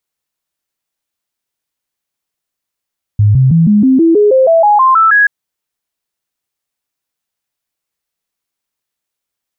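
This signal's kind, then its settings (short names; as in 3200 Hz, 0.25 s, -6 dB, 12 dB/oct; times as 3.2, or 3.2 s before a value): stepped sine 104 Hz up, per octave 3, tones 13, 0.16 s, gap 0.00 s -4.5 dBFS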